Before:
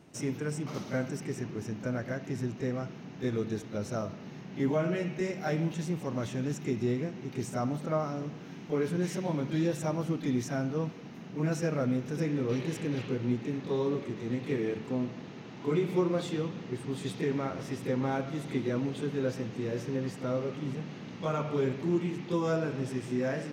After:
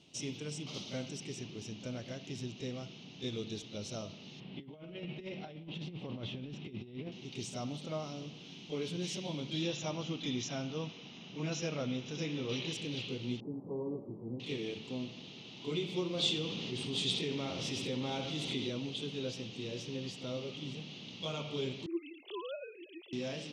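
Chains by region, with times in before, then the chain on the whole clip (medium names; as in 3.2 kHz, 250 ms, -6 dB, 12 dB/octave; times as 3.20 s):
4.40–7.12 s: compressor with a negative ratio -34 dBFS, ratio -0.5 + distance through air 350 m
9.62–12.73 s: brick-wall FIR low-pass 7.3 kHz + peaking EQ 1.3 kHz +5.5 dB 1.9 oct + band-stop 4.4 kHz, Q 13
13.40–14.40 s: steep low-pass 980 Hz + doubling 18 ms -12 dB
16.17–18.70 s: flutter echo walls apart 11.1 m, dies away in 0.35 s + level flattener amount 50%
21.86–23.13 s: formants replaced by sine waves + high-pass 420 Hz
whole clip: low-pass 5.9 kHz 12 dB/octave; resonant high shelf 2.3 kHz +11 dB, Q 3; trim -8 dB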